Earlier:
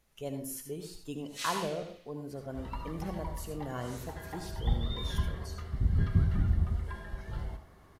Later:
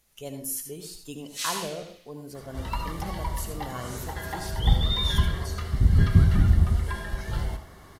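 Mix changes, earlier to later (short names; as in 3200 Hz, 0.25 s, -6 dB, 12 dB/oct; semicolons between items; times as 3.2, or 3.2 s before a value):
second sound +8.5 dB; master: add high shelf 3200 Hz +10.5 dB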